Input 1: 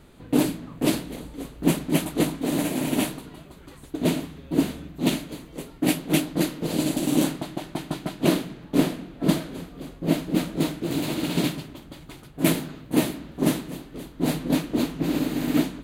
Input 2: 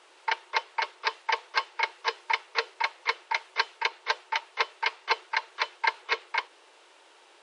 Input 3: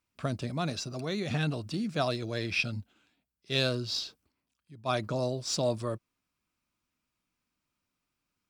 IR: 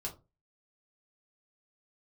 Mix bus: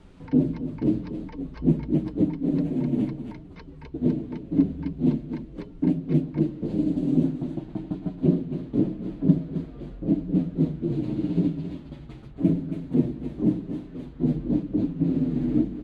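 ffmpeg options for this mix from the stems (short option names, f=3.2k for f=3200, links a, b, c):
-filter_complex "[0:a]adynamicsmooth=sensitivity=0.5:basefreq=4.4k,asplit=2[a][b];[b]adelay=7.4,afreqshift=-0.88[c];[a][c]amix=inputs=2:normalize=1,volume=-1.5dB,asplit=2[d][e];[e]volume=-12.5dB[f];[1:a]volume=-10dB[g];[f]aecho=0:1:268:1[h];[d][g][h]amix=inputs=3:normalize=0,lowshelf=f=340:g=9,acrossover=split=500[i][j];[j]acompressor=threshold=-50dB:ratio=8[k];[i][k]amix=inputs=2:normalize=0"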